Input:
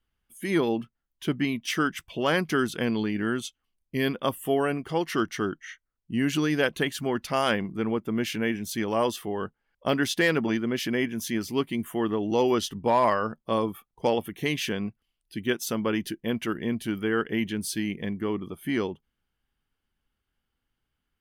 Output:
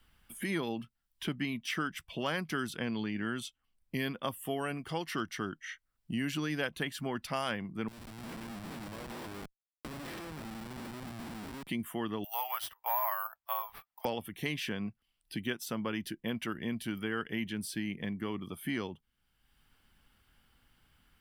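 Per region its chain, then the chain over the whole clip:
2.78–3.37 air absorption 66 m + notch 4200 Hz, Q 26
7.88–11.67 stepped spectrum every 0.2 s + compressor 5:1, threshold -41 dBFS + Schmitt trigger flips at -45 dBFS
12.24–14.05 steep high-pass 680 Hz 48 dB/oct + careless resampling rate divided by 3×, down none, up zero stuff
whole clip: bell 400 Hz -5.5 dB 1 oct; notch 6500 Hz, Q 9.5; three-band squash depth 70%; gain -6.5 dB

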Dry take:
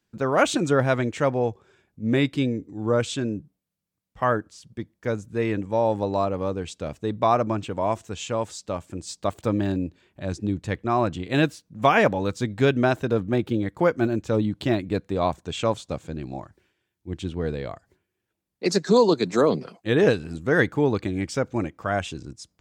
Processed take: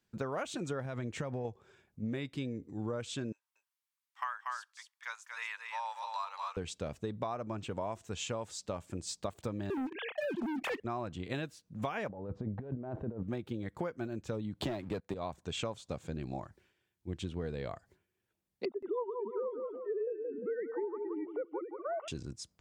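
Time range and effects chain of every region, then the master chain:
0.85–1.45 compressor 5:1, threshold -24 dBFS + bell 130 Hz +5 dB 2.2 oct
3.32–6.57 elliptic high-pass 960 Hz, stop band 80 dB + echo 0.236 s -5.5 dB
9.7–10.8 sine-wave speech + sample leveller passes 3 + fast leveller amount 70%
12.09–13.23 self-modulated delay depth 0.075 ms + Chebyshev low-pass 700 Hz + negative-ratio compressor -32 dBFS
14.62–15.14 bell 790 Hz +7.5 dB 1.6 oct + sample leveller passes 2 + three-band squash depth 40%
18.65–22.08 sine-wave speech + polynomial smoothing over 65 samples + feedback echo 0.175 s, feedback 28%, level -9.5 dB
whole clip: bell 300 Hz -4.5 dB 0.24 oct; compressor 12:1, threshold -30 dBFS; gain -3.5 dB

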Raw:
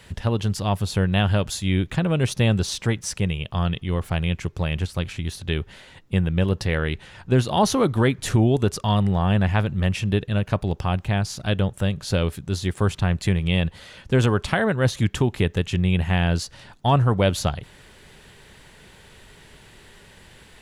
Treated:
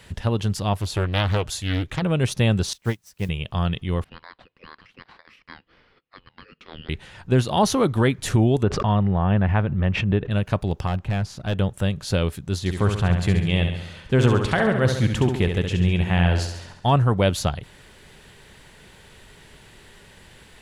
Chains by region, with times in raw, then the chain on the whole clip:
0.73–2.02 bell 200 Hz -11.5 dB 0.52 oct + Doppler distortion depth 0.83 ms
2.73–3.29 self-modulated delay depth 0.084 ms + requantised 8-bit, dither triangular + upward expander 2.5:1, over -36 dBFS
4.04–6.89 rippled Chebyshev high-pass 960 Hz, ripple 6 dB + ring modulator 1500 Hz + air absorption 400 m
8.63–10.31 LPF 2000 Hz + backwards sustainer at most 49 dB/s
10.87–11.59 high shelf 3600 Hz -11.5 dB + overloaded stage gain 18 dB
12.59–16.86 high shelf 6100 Hz -5 dB + feedback echo 68 ms, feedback 56%, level -6.5 dB
whole clip: dry

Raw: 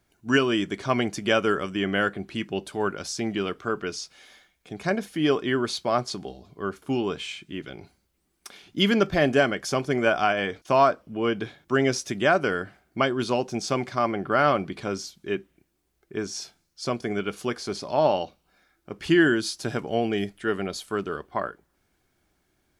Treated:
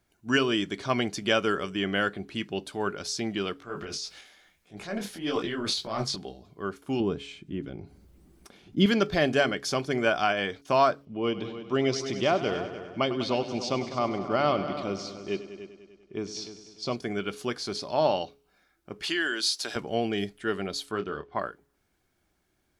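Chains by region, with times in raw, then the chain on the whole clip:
3.59–6.16 transient shaper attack -7 dB, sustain +10 dB + detuned doubles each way 59 cents
7–8.86 upward compressor, threshold -43 dBFS + tilt shelf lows +8 dB, about 630 Hz
11.05–16.96 LPF 5100 Hz + bell 1600 Hz -12.5 dB 0.37 oct + multi-head echo 99 ms, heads all three, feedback 41%, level -14.5 dB
19.03–19.76 tilt shelf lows -5 dB, about 760 Hz + compressor 2:1, threshold -24 dBFS + HPF 330 Hz
20.91–21.39 LPF 4700 Hz + doubler 27 ms -9.5 dB
whole clip: de-hum 139.9 Hz, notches 3; dynamic EQ 4100 Hz, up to +7 dB, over -47 dBFS, Q 1.6; gain -3 dB

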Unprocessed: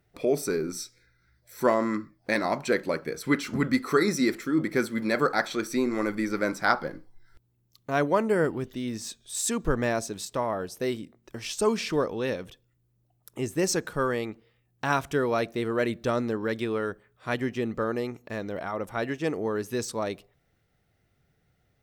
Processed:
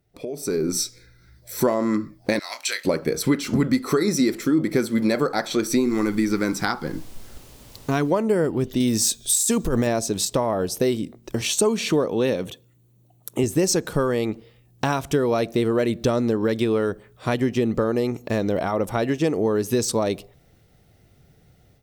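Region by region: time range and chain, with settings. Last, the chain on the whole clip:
2.39–2.85 Chebyshev high-pass 2400 Hz + doubler 25 ms -8 dB
5.8–8.1 bell 590 Hz -14.5 dB 0.42 oct + added noise pink -60 dBFS
8.8–9.87 high shelf 6300 Hz +10.5 dB + negative-ratio compressor -28 dBFS
11.41–13.44 HPF 110 Hz + notch 5100 Hz, Q 5.6
whole clip: compressor 4:1, threshold -32 dBFS; bell 1600 Hz -7.5 dB 1.5 oct; AGC gain up to 14.5 dB

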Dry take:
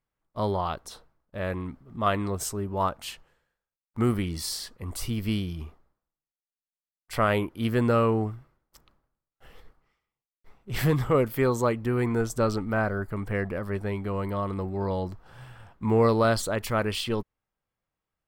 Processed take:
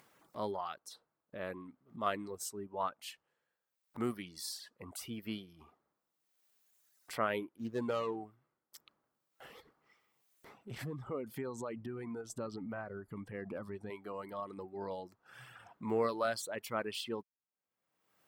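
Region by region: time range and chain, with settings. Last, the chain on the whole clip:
7.57–8.16 median filter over 25 samples + high shelf 12000 Hz -6.5 dB
10.71–13.9 low shelf 270 Hz +11.5 dB + compressor 16:1, threshold -22 dBFS + LPF 11000 Hz
whole clip: reverb removal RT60 1.6 s; HPF 200 Hz 12 dB/oct; upward compressor, threshold -34 dBFS; gain -9 dB

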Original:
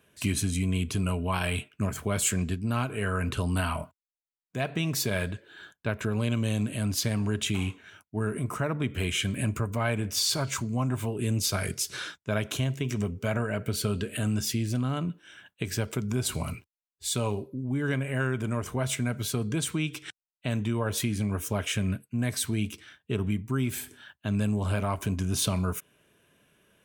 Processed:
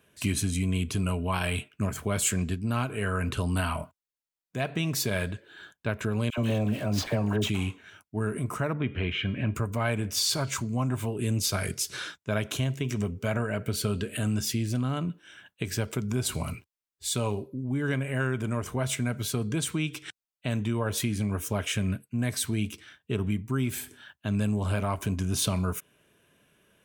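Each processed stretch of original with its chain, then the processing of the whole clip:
6.3–7.49 median filter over 5 samples + bell 680 Hz +8.5 dB 1.3 oct + dispersion lows, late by 78 ms, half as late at 1000 Hz
8.73–9.55 LPF 3200 Hz 24 dB/oct + de-hum 406.1 Hz, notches 32
whole clip: dry

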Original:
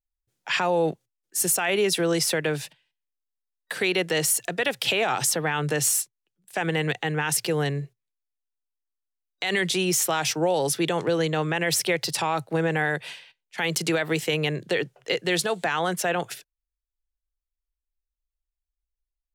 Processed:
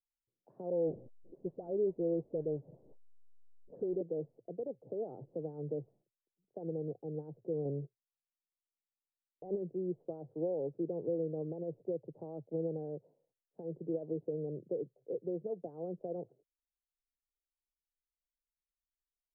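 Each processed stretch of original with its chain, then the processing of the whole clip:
0.7–4.01 zero-crossing step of -30 dBFS + dispersion highs, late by 94 ms, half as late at 1500 Hz
7.65–9.57 sample leveller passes 2 + rippled Chebyshev low-pass 2900 Hz, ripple 3 dB
whole clip: steep low-pass 540 Hz 36 dB/oct; low shelf 250 Hz -11 dB; gain -6.5 dB

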